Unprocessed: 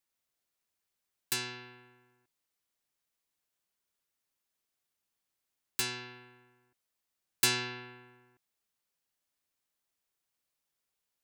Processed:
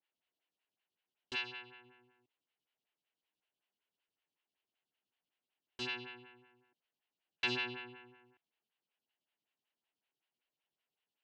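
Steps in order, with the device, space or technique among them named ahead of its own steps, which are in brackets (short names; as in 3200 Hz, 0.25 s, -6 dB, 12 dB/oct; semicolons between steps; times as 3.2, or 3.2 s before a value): vibe pedal into a guitar amplifier (photocell phaser 5.3 Hz; tube stage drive 32 dB, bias 0.4; speaker cabinet 100–4300 Hz, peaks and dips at 540 Hz -4 dB, 1200 Hz -6 dB, 2900 Hz +9 dB); 1.35–1.84 bell 210 Hz -14.5 dB -> -6.5 dB 1.5 oct; gain +3 dB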